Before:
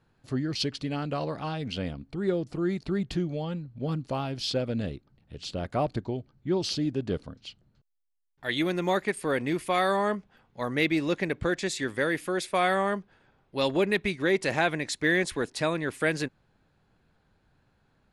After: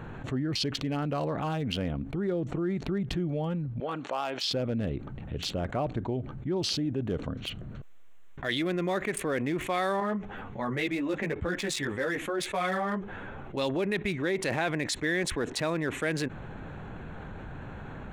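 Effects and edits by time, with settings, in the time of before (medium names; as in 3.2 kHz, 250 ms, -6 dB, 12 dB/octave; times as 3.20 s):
3.80–4.51 s: band-pass 650–7600 Hz
7.31–9.42 s: band-stop 870 Hz, Q 7.2
10.00–13.57 s: three-phase chorus
whole clip: local Wiener filter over 9 samples; level flattener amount 70%; trim -6 dB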